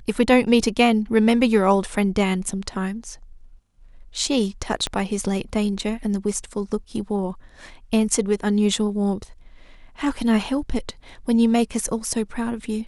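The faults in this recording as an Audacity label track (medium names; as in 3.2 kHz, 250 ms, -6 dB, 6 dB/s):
4.870000	4.870000	pop -11 dBFS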